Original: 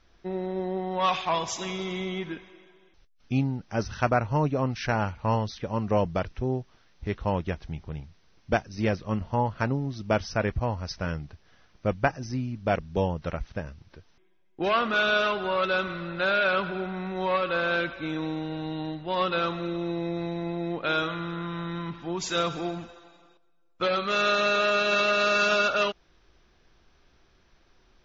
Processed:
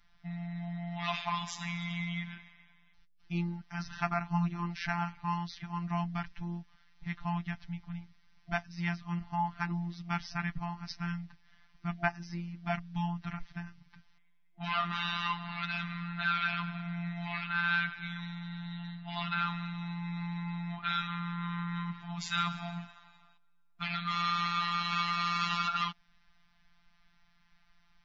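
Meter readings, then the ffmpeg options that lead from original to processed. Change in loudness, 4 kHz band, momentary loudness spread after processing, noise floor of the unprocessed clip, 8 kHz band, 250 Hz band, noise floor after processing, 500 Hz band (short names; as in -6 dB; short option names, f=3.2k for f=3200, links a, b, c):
-7.5 dB, -6.0 dB, 11 LU, -63 dBFS, n/a, -6.5 dB, -65 dBFS, -20.5 dB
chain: -af "equalizer=f=250:t=o:w=0.33:g=3,equalizer=f=630:t=o:w=0.33:g=-5,equalizer=f=2k:t=o:w=0.33:g=5,equalizer=f=6.3k:t=o:w=0.33:g=-7,afftfilt=real='re*(1-between(b*sr/4096,270,690))':imag='im*(1-between(b*sr/4096,270,690))':win_size=4096:overlap=0.75,afftfilt=real='hypot(re,im)*cos(PI*b)':imag='0':win_size=1024:overlap=0.75,volume=-1.5dB"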